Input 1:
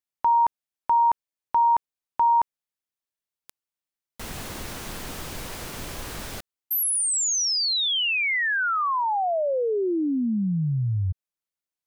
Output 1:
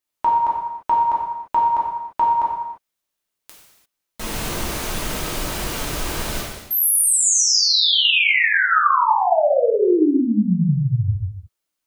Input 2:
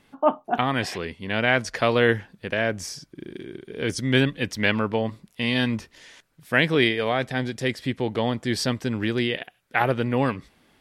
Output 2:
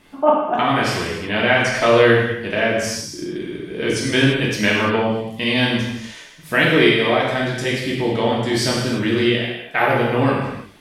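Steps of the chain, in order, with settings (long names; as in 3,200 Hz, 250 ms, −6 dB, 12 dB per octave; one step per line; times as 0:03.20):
in parallel at 0 dB: downward compressor, threshold −35 dBFS
on the sum: reverb whose tail is shaped and stops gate 370 ms falling, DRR −5 dB
level −1 dB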